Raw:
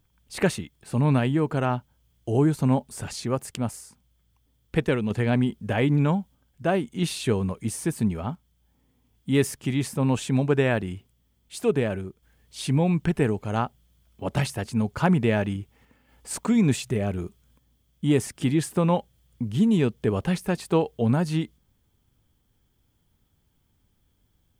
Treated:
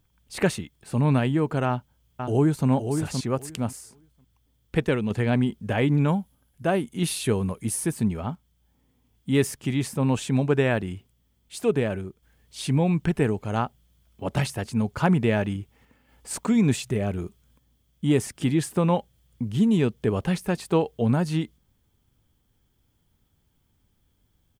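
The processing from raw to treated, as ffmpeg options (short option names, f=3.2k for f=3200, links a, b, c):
-filter_complex "[0:a]asplit=2[a][b];[b]afade=t=in:st=1.67:d=0.01,afade=t=out:st=2.68:d=0.01,aecho=0:1:520|1040|1560:0.501187|0.0751781|0.0112767[c];[a][c]amix=inputs=2:normalize=0,asettb=1/sr,asplit=3[d][e][f];[d]atrim=end=6.084[g];[e]atrim=start=6.08:end=7.91,asetpts=PTS-STARTPTS,afade=t=in:d=0.004:c=qsin,afade=t=out:st=1.826:d=0.004:c=qsin,equalizer=f=11k:w=3:g=13[h];[f]atrim=start=7.906[i];[g][h]acrossfade=d=0.004:c1=hsin:c2=qsin[j];[j][i]acrossfade=d=0.004:c1=qsin:c2=hsin"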